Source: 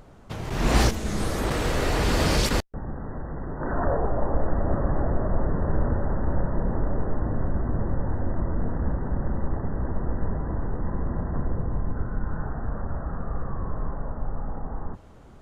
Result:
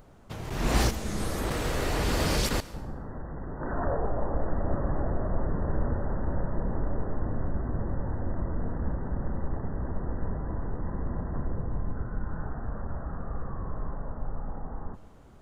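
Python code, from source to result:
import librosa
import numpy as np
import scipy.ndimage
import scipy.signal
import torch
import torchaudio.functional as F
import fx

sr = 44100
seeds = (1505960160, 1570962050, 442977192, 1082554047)

y = fx.high_shelf(x, sr, hz=11000.0, db=7.5)
y = fx.rev_plate(y, sr, seeds[0], rt60_s=0.85, hf_ratio=0.85, predelay_ms=90, drr_db=16.0)
y = F.gain(torch.from_numpy(y), -4.5).numpy()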